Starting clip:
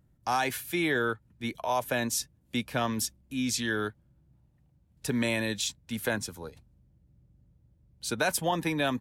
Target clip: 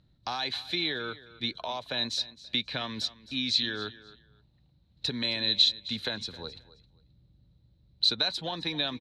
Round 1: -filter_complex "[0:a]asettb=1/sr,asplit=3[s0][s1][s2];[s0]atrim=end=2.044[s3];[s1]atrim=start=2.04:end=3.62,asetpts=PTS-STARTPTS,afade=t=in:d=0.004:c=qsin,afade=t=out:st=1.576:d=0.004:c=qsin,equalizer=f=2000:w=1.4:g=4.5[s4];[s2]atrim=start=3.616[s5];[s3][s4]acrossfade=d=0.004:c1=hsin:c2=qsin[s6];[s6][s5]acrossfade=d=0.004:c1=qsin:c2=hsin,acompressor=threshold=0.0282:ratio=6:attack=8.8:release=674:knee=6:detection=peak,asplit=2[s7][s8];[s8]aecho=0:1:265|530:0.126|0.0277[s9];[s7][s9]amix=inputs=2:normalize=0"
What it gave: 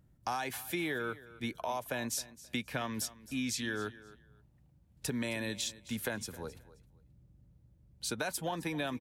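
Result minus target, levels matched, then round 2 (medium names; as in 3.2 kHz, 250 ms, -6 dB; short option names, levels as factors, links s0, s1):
4 kHz band -8.0 dB
-filter_complex "[0:a]asettb=1/sr,asplit=3[s0][s1][s2];[s0]atrim=end=2.044[s3];[s1]atrim=start=2.04:end=3.62,asetpts=PTS-STARTPTS,afade=t=in:d=0.004:c=qsin,afade=t=out:st=1.576:d=0.004:c=qsin,equalizer=f=2000:w=1.4:g=4.5[s4];[s2]atrim=start=3.616[s5];[s3][s4]acrossfade=d=0.004:c1=hsin:c2=qsin[s6];[s6][s5]acrossfade=d=0.004:c1=qsin:c2=hsin,acompressor=threshold=0.0282:ratio=6:attack=8.8:release=674:knee=6:detection=peak,lowpass=f=4000:t=q:w=16,asplit=2[s7][s8];[s8]aecho=0:1:265|530:0.126|0.0277[s9];[s7][s9]amix=inputs=2:normalize=0"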